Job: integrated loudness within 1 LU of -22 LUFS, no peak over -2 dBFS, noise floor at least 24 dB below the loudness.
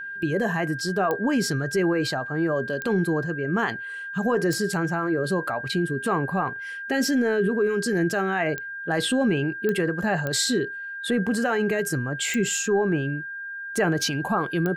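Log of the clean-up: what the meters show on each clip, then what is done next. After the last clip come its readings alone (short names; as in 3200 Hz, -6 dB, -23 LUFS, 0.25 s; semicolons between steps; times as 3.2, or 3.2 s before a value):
clicks 8; steady tone 1600 Hz; tone level -32 dBFS; loudness -25.0 LUFS; peak -11.5 dBFS; loudness target -22.0 LUFS
-> de-click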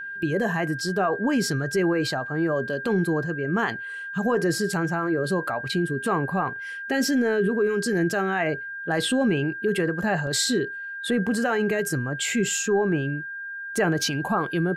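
clicks 0; steady tone 1600 Hz; tone level -32 dBFS
-> notch 1600 Hz, Q 30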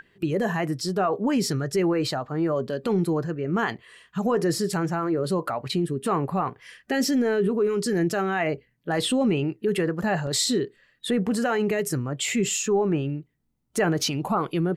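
steady tone none; loudness -25.5 LUFS; peak -12.5 dBFS; loudness target -22.0 LUFS
-> gain +3.5 dB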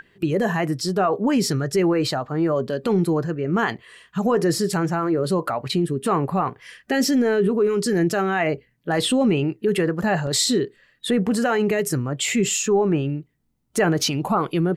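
loudness -22.0 LUFS; peak -9.0 dBFS; noise floor -66 dBFS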